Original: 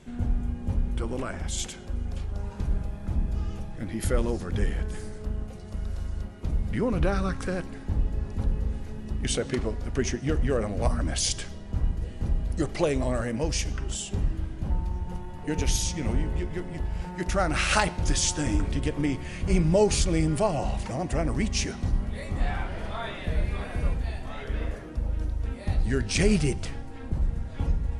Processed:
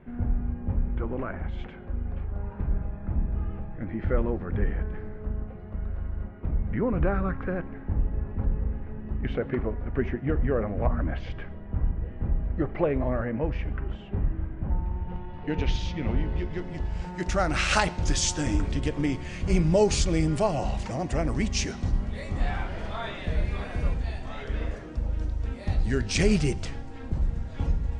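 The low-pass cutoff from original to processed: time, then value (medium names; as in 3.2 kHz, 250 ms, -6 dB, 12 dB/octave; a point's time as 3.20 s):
low-pass 24 dB/octave
14.71 s 2.1 kHz
15.43 s 3.7 kHz
16.05 s 3.7 kHz
16.99 s 7.9 kHz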